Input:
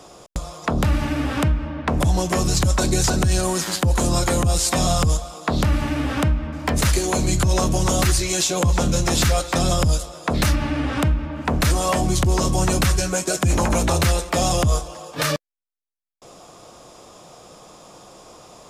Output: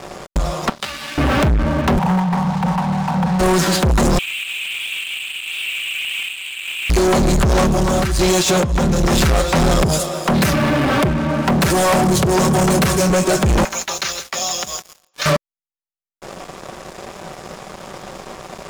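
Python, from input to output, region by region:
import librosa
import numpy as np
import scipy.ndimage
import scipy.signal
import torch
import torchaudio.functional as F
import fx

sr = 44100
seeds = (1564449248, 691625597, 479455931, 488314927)

y = fx.chain(x, sr, fx.bandpass_q(hz=4200.0, q=1.8),
    fx.doubler(ms=14.0, db=-3.0), at=(0.69, 1.18))
y = fx.spec_flatten(y, sr, power=0.48, at=(1.97, 3.39), fade=0.02)
y = fx.double_bandpass(y, sr, hz=390.0, octaves=2.3, at=(1.97, 3.39), fade=0.02)
y = fx.chain(y, sr, fx.delta_mod(bps=16000, step_db=-29.5),
    fx.steep_highpass(hz=2400.0, slope=96),
    fx.leveller(passes=3), at=(4.18, 6.9))
y = fx.chain(y, sr, fx.highpass(hz=41.0, slope=6),
    fx.over_compress(threshold_db=-23.0, ratio=-0.5), at=(7.65, 9.12))
y = fx.chain(y, sr, fx.highpass(hz=100.0, slope=24),
    fx.high_shelf(hz=9100.0, db=11.0),
    fx.transformer_sat(knee_hz=850.0), at=(9.82, 13.1))
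y = fx.chain(y, sr, fx.brickwall_lowpass(high_hz=7200.0),
    fx.differentiator(),
    fx.echo_single(ms=162, db=-11.5), at=(13.64, 15.26))
y = fx.high_shelf(y, sr, hz=3300.0, db=-11.0)
y = y + 0.5 * np.pad(y, (int(5.2 * sr / 1000.0), 0))[:len(y)]
y = fx.leveller(y, sr, passes=5)
y = F.gain(torch.from_numpy(y), -3.5).numpy()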